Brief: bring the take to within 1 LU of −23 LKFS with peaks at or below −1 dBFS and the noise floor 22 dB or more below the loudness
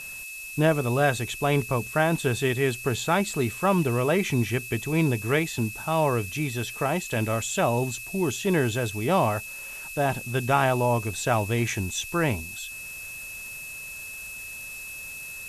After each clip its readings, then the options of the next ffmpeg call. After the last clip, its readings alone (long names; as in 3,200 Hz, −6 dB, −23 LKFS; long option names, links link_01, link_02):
interfering tone 2,600 Hz; level of the tone −37 dBFS; background noise floor −39 dBFS; target noise floor −48 dBFS; integrated loudness −26.0 LKFS; sample peak −9.5 dBFS; target loudness −23.0 LKFS
→ -af "bandreject=frequency=2600:width=30"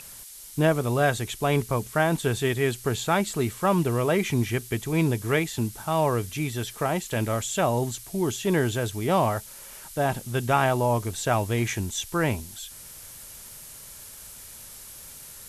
interfering tone none found; background noise floor −44 dBFS; target noise floor −48 dBFS
→ -af "afftdn=noise_reduction=6:noise_floor=-44"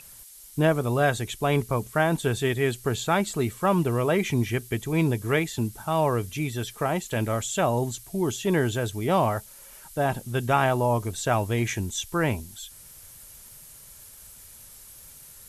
background noise floor −48 dBFS; integrated loudness −26.0 LKFS; sample peak −10.0 dBFS; target loudness −23.0 LKFS
→ -af "volume=3dB"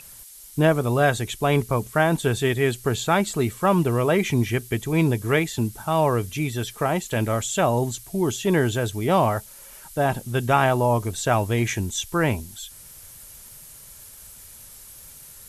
integrated loudness −23.0 LKFS; sample peak −7.0 dBFS; background noise floor −45 dBFS